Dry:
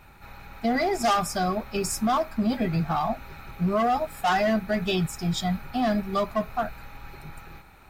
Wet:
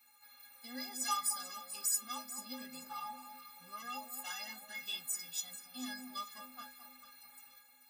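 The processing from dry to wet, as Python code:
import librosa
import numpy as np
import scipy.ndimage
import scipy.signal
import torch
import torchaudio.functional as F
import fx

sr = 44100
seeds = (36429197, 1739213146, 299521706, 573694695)

y = scipy.signal.sosfilt(scipy.signal.butter(2, 50.0, 'highpass', fs=sr, output='sos'), x)
y = F.preemphasis(torch.from_numpy(y), 0.97).numpy()
y = fx.notch(y, sr, hz=670.0, q=12.0)
y = fx.stiff_resonator(y, sr, f0_hz=250.0, decay_s=0.37, stiffness=0.03)
y = fx.echo_alternate(y, sr, ms=220, hz=1100.0, feedback_pct=56, wet_db=-7.5)
y = y * librosa.db_to_amplitude(13.0)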